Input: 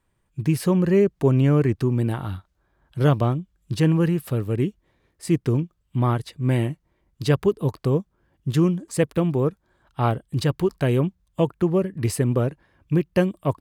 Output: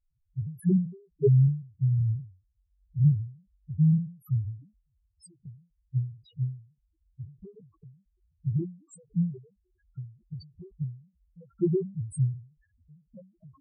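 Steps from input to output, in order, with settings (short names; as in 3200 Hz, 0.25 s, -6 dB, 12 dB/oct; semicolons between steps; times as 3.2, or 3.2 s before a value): loudest bins only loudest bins 1; ending taper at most 140 dB/s; gain +4.5 dB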